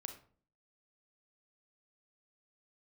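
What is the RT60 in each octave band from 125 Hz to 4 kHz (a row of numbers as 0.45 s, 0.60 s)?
0.60 s, 0.65 s, 0.50 s, 0.45 s, 0.35 s, 0.30 s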